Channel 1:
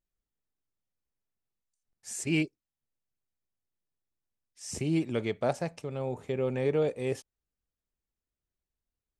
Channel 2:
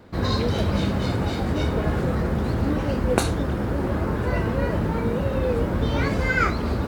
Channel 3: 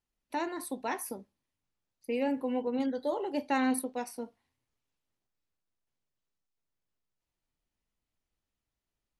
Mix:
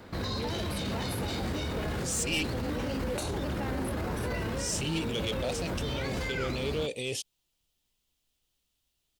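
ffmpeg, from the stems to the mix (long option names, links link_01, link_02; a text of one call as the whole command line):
ffmpeg -i stem1.wav -i stem2.wav -i stem3.wav -filter_complex "[0:a]highshelf=frequency=2200:width_type=q:width=3:gain=11.5,volume=2.5dB[link_01];[1:a]tiltshelf=frequency=970:gain=-3,acrossover=split=1000|2000[link_02][link_03][link_04];[link_02]acompressor=threshold=-27dB:ratio=4[link_05];[link_03]acompressor=threshold=-49dB:ratio=4[link_06];[link_04]acompressor=threshold=-33dB:ratio=4[link_07];[link_05][link_06][link_07]amix=inputs=3:normalize=0,volume=1.5dB[link_08];[2:a]acompressor=threshold=-34dB:ratio=6,adelay=100,volume=3dB[link_09];[link_01][link_08][link_09]amix=inputs=3:normalize=0,volume=17dB,asoftclip=hard,volume=-17dB,alimiter=level_in=1dB:limit=-24dB:level=0:latency=1:release=14,volume=-1dB" out.wav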